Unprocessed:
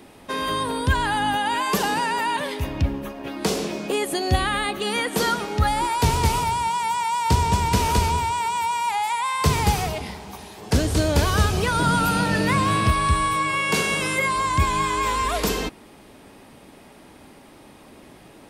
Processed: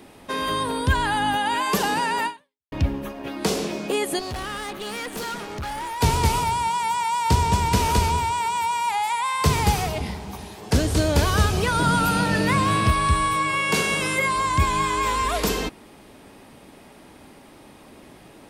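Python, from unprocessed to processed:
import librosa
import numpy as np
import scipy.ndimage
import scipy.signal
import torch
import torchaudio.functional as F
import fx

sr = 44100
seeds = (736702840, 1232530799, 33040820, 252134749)

y = fx.tube_stage(x, sr, drive_db=28.0, bias=0.75, at=(4.19, 6.01))
y = fx.low_shelf(y, sr, hz=240.0, db=7.5, at=(9.95, 10.56))
y = fx.edit(y, sr, fx.fade_out_span(start_s=2.26, length_s=0.46, curve='exp'), tone=tone)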